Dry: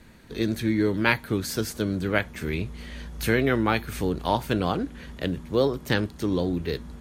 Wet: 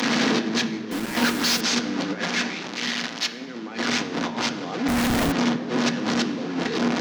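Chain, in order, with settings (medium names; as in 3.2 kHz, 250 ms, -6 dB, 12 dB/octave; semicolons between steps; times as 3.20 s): one-bit delta coder 32 kbps, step -23.5 dBFS; compressor with a negative ratio -29 dBFS, ratio -0.5; 2.25–3.32 s: bass shelf 470 Hz -12 dB; saturation -19 dBFS, distortion -28 dB; Chebyshev high-pass 210 Hz, order 3; on a send at -6 dB: reverberation RT60 3.0 s, pre-delay 3 ms; 0.91–1.61 s: on the sum: word length cut 6-bit, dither none; 4.88–5.32 s: Schmitt trigger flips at -35 dBFS; three bands expanded up and down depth 40%; trim +6 dB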